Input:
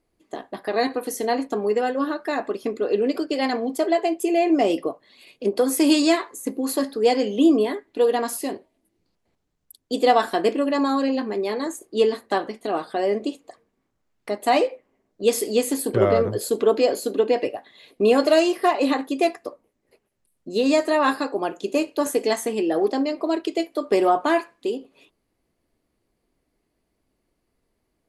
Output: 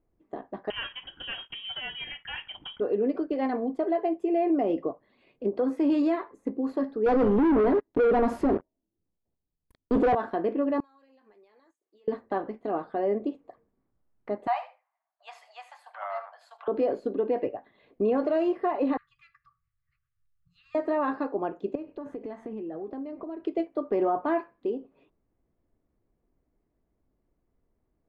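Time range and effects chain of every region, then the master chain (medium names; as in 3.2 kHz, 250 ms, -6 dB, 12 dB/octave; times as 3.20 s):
0.70–2.80 s: waveshaping leveller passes 1 + frequency inversion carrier 3.5 kHz
7.06–10.15 s: peaking EQ 2.6 kHz -8.5 dB 2.1 oct + waveshaping leveller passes 5
10.80–12.08 s: differentiator + compression 12:1, threshold -49 dBFS
14.47–16.68 s: steep high-pass 700 Hz 72 dB/octave + delay 76 ms -14.5 dB
18.97–20.75 s: de-hum 53.13 Hz, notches 17 + compression 1.5:1, threshold -48 dBFS + brick-wall FIR band-stop 150–1100 Hz
21.75–23.45 s: tone controls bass +7 dB, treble -4 dB + compression, threshold -30 dBFS
whole clip: low-pass 1.4 kHz 12 dB/octave; bass shelf 150 Hz +7.5 dB; peak limiter -12.5 dBFS; trim -5 dB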